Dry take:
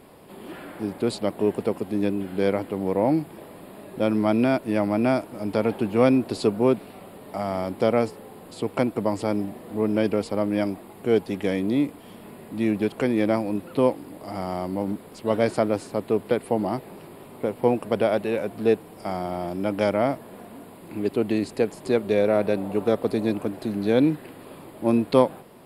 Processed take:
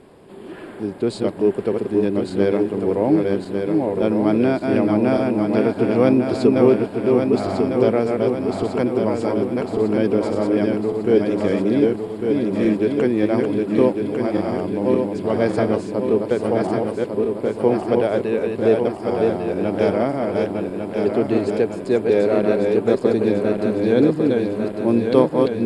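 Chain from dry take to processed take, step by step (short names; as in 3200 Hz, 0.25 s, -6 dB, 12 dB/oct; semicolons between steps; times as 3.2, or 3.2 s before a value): regenerating reverse delay 0.575 s, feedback 73%, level -3 dB; LPF 9500 Hz 24 dB/oct; low shelf 380 Hz +4 dB; small resonant body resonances 390/1600 Hz, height 6 dB, ringing for 25 ms; gain -1.5 dB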